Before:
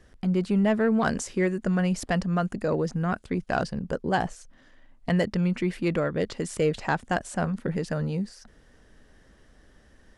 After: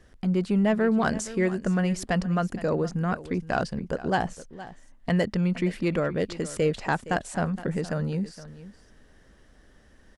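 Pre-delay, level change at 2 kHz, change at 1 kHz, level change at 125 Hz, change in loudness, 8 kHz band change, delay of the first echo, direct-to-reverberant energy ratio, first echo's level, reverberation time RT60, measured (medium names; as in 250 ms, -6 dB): no reverb, 0.0 dB, 0.0 dB, 0.0 dB, 0.0 dB, 0.0 dB, 466 ms, no reverb, -16.0 dB, no reverb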